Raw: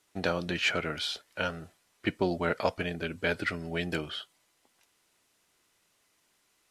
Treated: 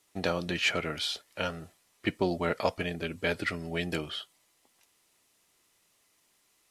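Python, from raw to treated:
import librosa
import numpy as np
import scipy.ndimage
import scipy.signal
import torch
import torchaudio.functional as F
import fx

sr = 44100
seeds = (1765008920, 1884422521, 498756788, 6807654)

y = fx.high_shelf(x, sr, hz=7100.0, db=5.0)
y = fx.notch(y, sr, hz=1500.0, q=11.0)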